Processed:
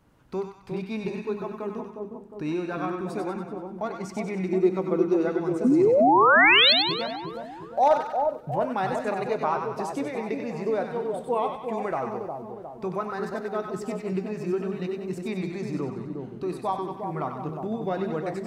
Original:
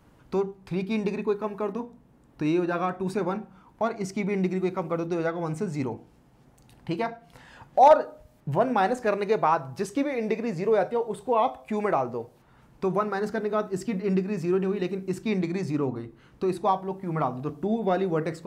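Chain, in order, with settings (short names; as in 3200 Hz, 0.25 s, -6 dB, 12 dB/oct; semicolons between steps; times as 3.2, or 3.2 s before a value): 4.48–5.28 bell 360 Hz +11.5 dB 0.8 oct; 5.64–6.73 painted sound rise 230–4500 Hz -14 dBFS; split-band echo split 930 Hz, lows 0.358 s, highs 95 ms, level -4.5 dB; gain -4.5 dB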